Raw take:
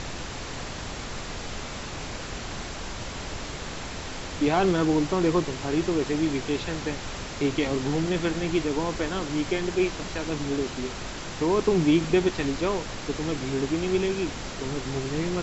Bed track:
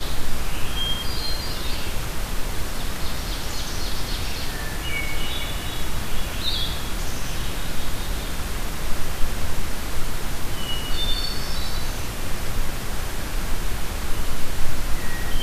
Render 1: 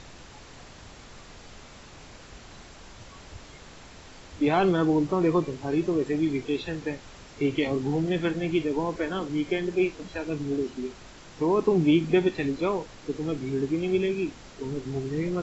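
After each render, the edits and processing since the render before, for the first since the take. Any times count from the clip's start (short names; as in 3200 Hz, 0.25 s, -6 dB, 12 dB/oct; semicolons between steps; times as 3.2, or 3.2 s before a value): noise print and reduce 12 dB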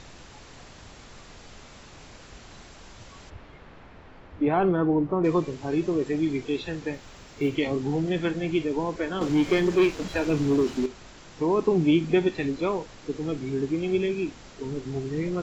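3.29–5.23 LPF 2500 Hz -> 1400 Hz; 6.94–7.56 companded quantiser 8-bit; 9.21–10.86 sample leveller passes 2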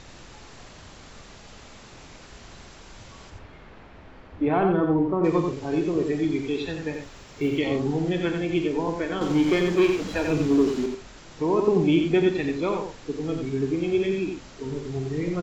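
doubler 46 ms -13 dB; echo 89 ms -5.5 dB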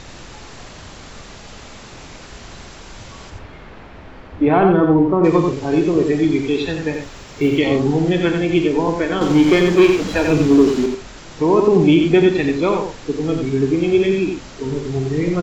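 gain +8.5 dB; limiter -3 dBFS, peak gain reduction 2.5 dB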